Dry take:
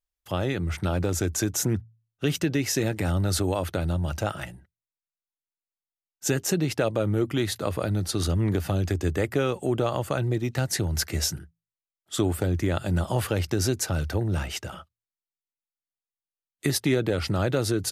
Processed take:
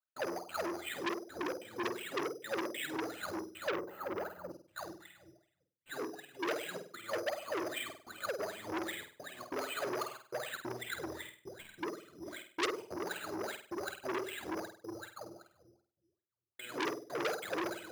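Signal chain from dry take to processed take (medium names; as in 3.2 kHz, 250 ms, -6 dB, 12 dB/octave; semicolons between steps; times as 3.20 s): slices played last to first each 122 ms, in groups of 4; distance through air 190 m; simulated room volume 350 m³, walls mixed, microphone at 2.6 m; compression 1.5:1, threshold -39 dBFS, peak gain reduction 10.5 dB; trance gate "..xxx.xxxxxxxx" 186 bpm -60 dB; wah-wah 2.6 Hz 330–2500 Hz, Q 18; sample-rate reducer 5.5 kHz, jitter 0%; on a send: flutter echo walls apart 8.5 m, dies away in 0.41 s; on the sum: time-frequency box 3.68–4.51 s, 2.1–12 kHz -13 dB; transformer saturation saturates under 3.5 kHz; trim +10.5 dB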